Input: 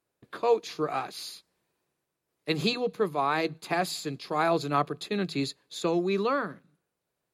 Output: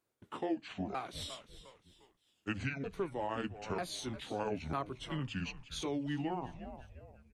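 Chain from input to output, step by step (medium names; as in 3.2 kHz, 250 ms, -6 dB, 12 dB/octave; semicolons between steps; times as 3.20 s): sawtooth pitch modulation -10.5 st, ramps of 946 ms; frequency-shifting echo 353 ms, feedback 40%, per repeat -120 Hz, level -16.5 dB; compression 2:1, threshold -37 dBFS, peak gain reduction 10.5 dB; trim -2 dB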